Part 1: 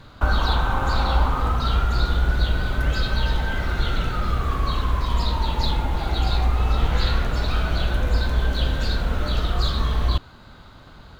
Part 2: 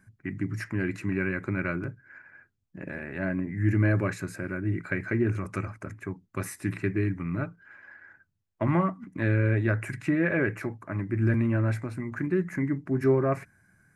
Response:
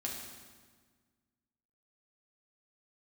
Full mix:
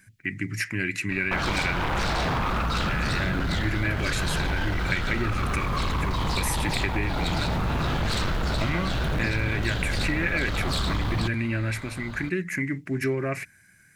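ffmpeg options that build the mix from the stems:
-filter_complex "[0:a]aeval=exprs='0.447*sin(PI/2*5.01*val(0)/0.447)':channel_layout=same,adelay=1100,volume=-13.5dB[link_01];[1:a]highshelf=frequency=1600:width_type=q:width=1.5:gain=12.5,volume=0dB[link_02];[link_01][link_02]amix=inputs=2:normalize=0,acompressor=threshold=-23dB:ratio=3"

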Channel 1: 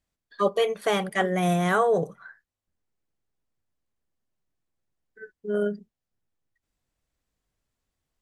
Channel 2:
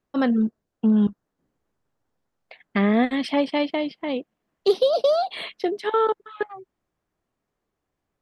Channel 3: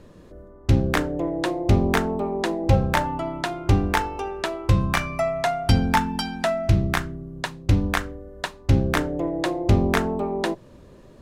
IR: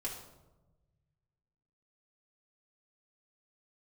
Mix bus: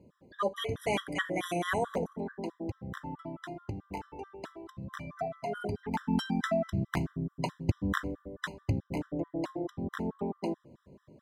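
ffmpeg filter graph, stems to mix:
-filter_complex "[0:a]tiltshelf=frequency=850:gain=-6.5,acrossover=split=220|3000[link_01][link_02][link_03];[link_01]acompressor=threshold=-23dB:ratio=10[link_04];[link_04][link_02][link_03]amix=inputs=3:normalize=0,volume=-5dB,asplit=3[link_05][link_06][link_07];[link_06]volume=-13dB[link_08];[1:a]afwtdn=0.02,lowshelf=frequency=370:width_type=q:width=3:gain=-9.5,volume=-13dB[link_09];[2:a]lowshelf=frequency=270:gain=11.5,acompressor=threshold=-15dB:ratio=8,volume=-3dB,afade=type=in:start_time=5.89:duration=0.28:silence=0.298538,afade=type=out:start_time=8.62:duration=0.25:silence=0.446684,asplit=2[link_10][link_11];[link_11]volume=-21.5dB[link_12];[link_07]apad=whole_len=362327[link_13];[link_09][link_13]sidechaingate=range=-33dB:threshold=-55dB:ratio=16:detection=peak[link_14];[3:a]atrim=start_sample=2205[link_15];[link_08][link_12]amix=inputs=2:normalize=0[link_16];[link_16][link_15]afir=irnorm=-1:irlink=0[link_17];[link_05][link_14][link_10][link_17]amix=inputs=4:normalize=0,highpass=130,highshelf=frequency=2400:gain=-5.5,afftfilt=real='re*gt(sin(2*PI*4.6*pts/sr)*(1-2*mod(floor(b*sr/1024/1000),2)),0)':imag='im*gt(sin(2*PI*4.6*pts/sr)*(1-2*mod(floor(b*sr/1024/1000),2)),0)':win_size=1024:overlap=0.75"

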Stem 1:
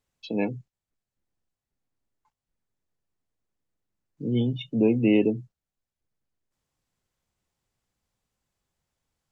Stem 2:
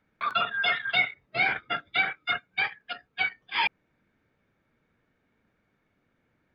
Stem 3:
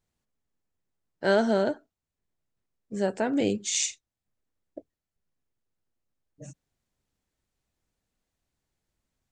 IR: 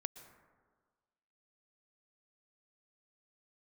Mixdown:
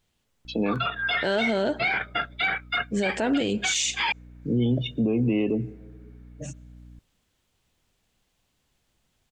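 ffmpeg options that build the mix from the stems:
-filter_complex "[0:a]adelay=250,volume=-3dB,asplit=2[link_01][link_02];[link_02]volume=-13dB[link_03];[1:a]dynaudnorm=framelen=130:gausssize=11:maxgain=7.5dB,aeval=exprs='val(0)+0.00708*(sin(2*PI*60*n/s)+sin(2*PI*2*60*n/s)/2+sin(2*PI*3*60*n/s)/3+sin(2*PI*4*60*n/s)/4+sin(2*PI*5*60*n/s)/5)':channel_layout=same,adelay=450,volume=-8.5dB[link_04];[2:a]equalizer=frequency=3100:width_type=o:width=0.78:gain=8.5,volume=0dB,asplit=2[link_05][link_06];[link_06]volume=-16.5dB[link_07];[3:a]atrim=start_sample=2205[link_08];[link_03][link_07]amix=inputs=2:normalize=0[link_09];[link_09][link_08]afir=irnorm=-1:irlink=0[link_10];[link_01][link_04][link_05][link_10]amix=inputs=4:normalize=0,acontrast=63,alimiter=limit=-16.5dB:level=0:latency=1:release=52"

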